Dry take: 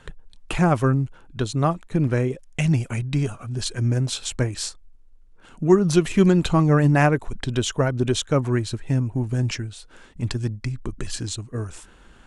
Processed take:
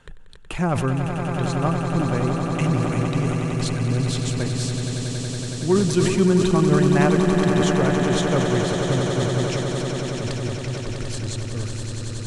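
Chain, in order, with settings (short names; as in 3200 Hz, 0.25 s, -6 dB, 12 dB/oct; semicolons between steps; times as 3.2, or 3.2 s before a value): on a send: swelling echo 93 ms, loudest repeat 8, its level -9 dB; on the sum: sustainer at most 42 dB/s; gain -4 dB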